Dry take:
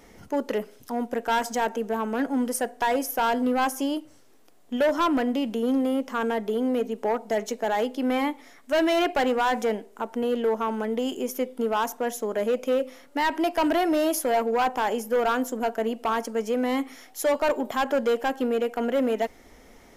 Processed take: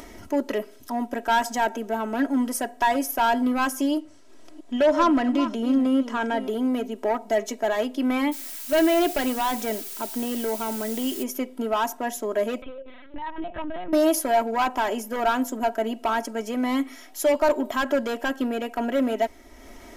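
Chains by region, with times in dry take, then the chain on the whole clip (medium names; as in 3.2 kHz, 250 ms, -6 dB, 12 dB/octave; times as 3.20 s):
3.98–6.48 s: chunks repeated in reverse 313 ms, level -10.5 dB + low-pass 8.4 kHz
8.31–11.22 s: peaking EQ 1.1 kHz -4.5 dB 1.6 oct + added noise blue -38 dBFS
12.62–13.93 s: compression 16:1, threshold -32 dBFS + LPC vocoder at 8 kHz pitch kept
whole clip: comb 3.1 ms, depth 67%; upward compressor, threshold -36 dBFS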